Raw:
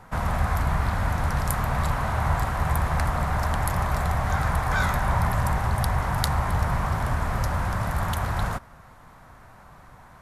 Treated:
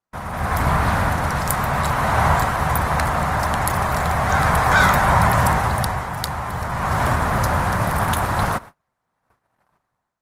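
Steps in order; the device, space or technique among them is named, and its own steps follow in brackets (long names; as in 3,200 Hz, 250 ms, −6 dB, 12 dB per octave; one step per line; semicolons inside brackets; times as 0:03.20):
video call (high-pass filter 160 Hz 6 dB per octave; automatic gain control gain up to 15 dB; noise gate −31 dBFS, range −36 dB; level −1.5 dB; Opus 20 kbit/s 48,000 Hz)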